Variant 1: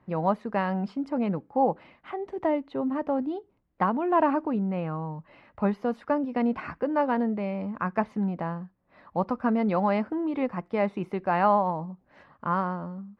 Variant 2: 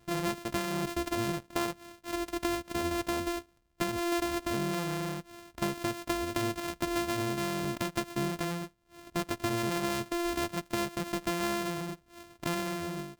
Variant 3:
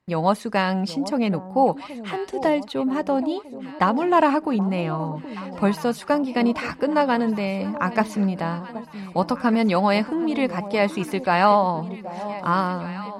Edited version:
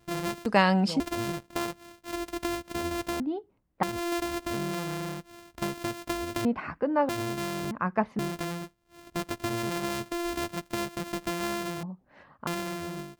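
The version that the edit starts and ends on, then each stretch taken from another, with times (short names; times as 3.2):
2
0.46–1 from 3
3.2–3.83 from 1
6.45–7.09 from 1
7.71–8.19 from 1
11.83–12.47 from 1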